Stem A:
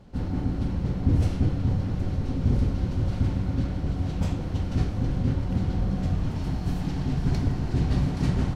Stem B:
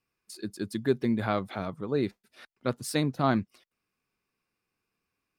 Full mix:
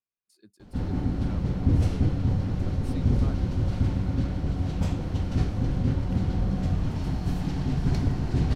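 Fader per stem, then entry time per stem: 0.0, −19.5 decibels; 0.60, 0.00 seconds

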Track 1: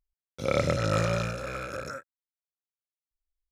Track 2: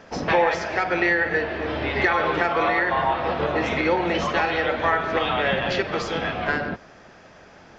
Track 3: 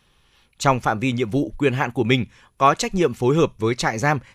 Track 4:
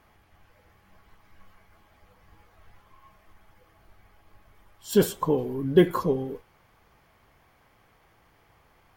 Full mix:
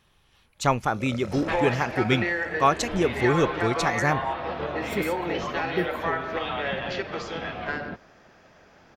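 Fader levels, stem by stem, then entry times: −13.5, −6.5, −4.5, −10.0 decibels; 0.55, 1.20, 0.00, 0.00 seconds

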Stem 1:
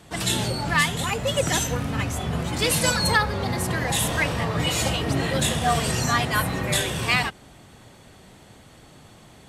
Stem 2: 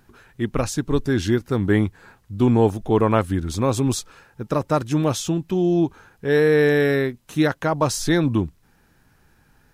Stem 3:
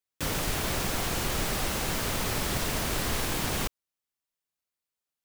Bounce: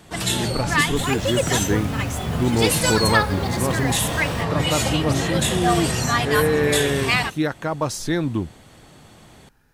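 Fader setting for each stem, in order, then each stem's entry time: +1.5, −3.5, −12.0 decibels; 0.00, 0.00, 0.75 seconds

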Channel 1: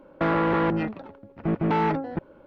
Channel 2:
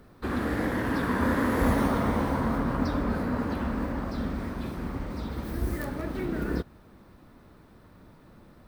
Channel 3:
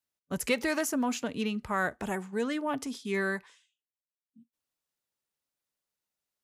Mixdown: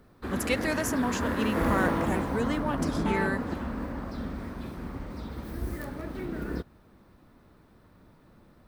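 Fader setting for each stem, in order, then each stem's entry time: −8.5, −4.0, 0.0 decibels; 1.35, 0.00, 0.00 seconds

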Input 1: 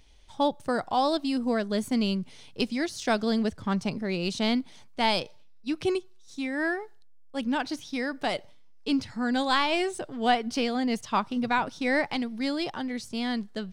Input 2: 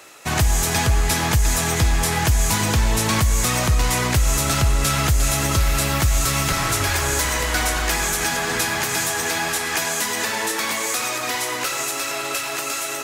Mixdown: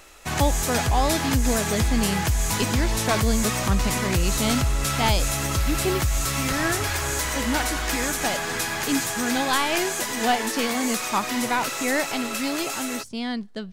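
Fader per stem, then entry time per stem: +1.0, −5.0 decibels; 0.00, 0.00 seconds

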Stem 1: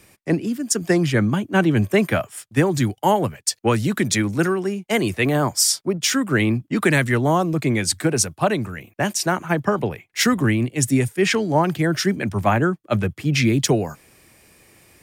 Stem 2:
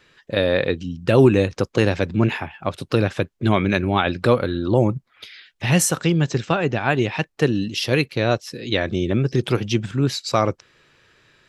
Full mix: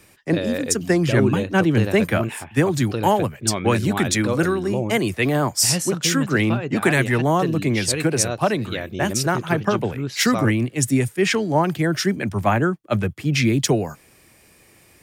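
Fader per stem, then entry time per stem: −0.5, −7.5 decibels; 0.00, 0.00 seconds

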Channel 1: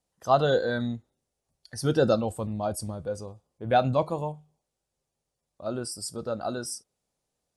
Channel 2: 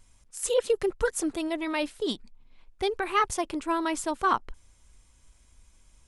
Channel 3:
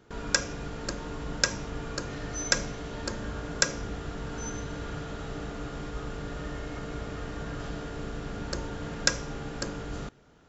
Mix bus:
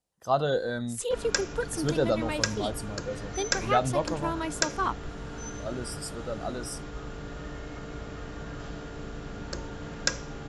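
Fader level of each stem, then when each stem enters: −3.5, −4.5, −2.5 decibels; 0.00, 0.55, 1.00 seconds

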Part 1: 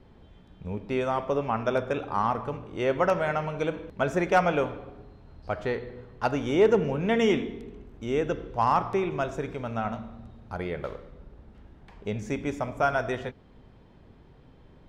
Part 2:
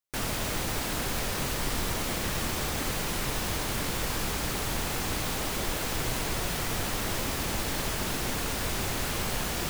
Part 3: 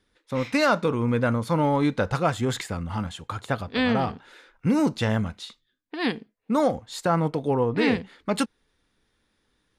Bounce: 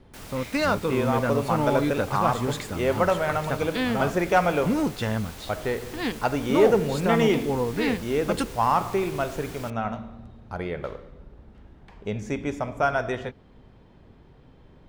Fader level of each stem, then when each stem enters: +1.5, −11.5, −3.0 decibels; 0.00, 0.00, 0.00 seconds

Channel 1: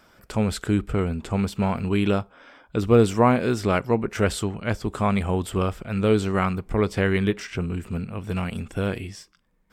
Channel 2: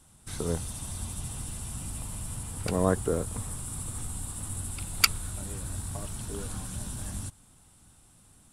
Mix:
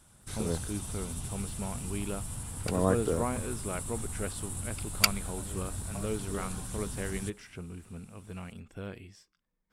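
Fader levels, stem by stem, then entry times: −15.0, −2.0 decibels; 0.00, 0.00 seconds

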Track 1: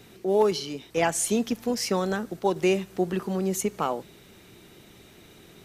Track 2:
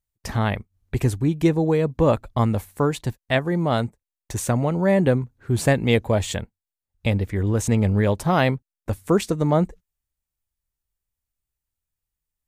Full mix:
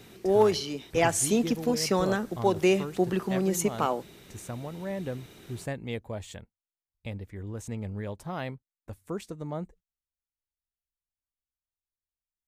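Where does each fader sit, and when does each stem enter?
0.0, −16.0 decibels; 0.00, 0.00 seconds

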